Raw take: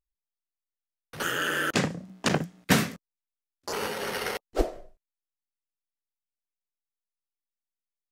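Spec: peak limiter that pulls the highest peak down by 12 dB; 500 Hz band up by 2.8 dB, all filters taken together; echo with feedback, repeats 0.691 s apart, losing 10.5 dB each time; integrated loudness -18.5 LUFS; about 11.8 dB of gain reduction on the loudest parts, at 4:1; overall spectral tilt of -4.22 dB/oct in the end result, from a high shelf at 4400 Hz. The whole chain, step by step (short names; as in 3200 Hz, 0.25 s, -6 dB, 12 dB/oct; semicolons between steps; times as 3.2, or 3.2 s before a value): bell 500 Hz +3.5 dB; high shelf 4400 Hz -4.5 dB; compressor 4:1, threshold -31 dBFS; limiter -28 dBFS; feedback echo 0.691 s, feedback 30%, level -10.5 dB; gain +21.5 dB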